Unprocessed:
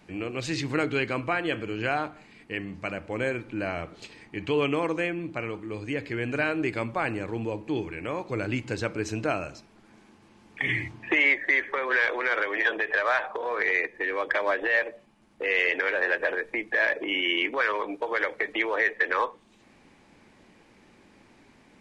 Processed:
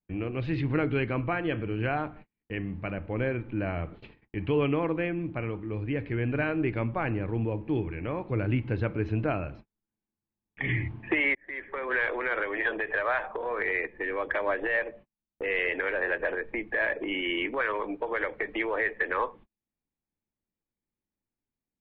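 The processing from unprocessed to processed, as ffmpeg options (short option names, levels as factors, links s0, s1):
-filter_complex "[0:a]asplit=2[s0][s1];[s0]atrim=end=11.35,asetpts=PTS-STARTPTS,afade=t=out:st=11.346:d=0.004:c=hsin[s2];[s1]atrim=start=11.35,asetpts=PTS-STARTPTS,afade=t=in:d=0.61[s3];[s2][s3]concat=n=2:v=0:a=1,agate=range=0.0126:threshold=0.00501:ratio=16:detection=peak,lowpass=f=3400:w=0.5412,lowpass=f=3400:w=1.3066,aemphasis=mode=reproduction:type=bsi,volume=0.708"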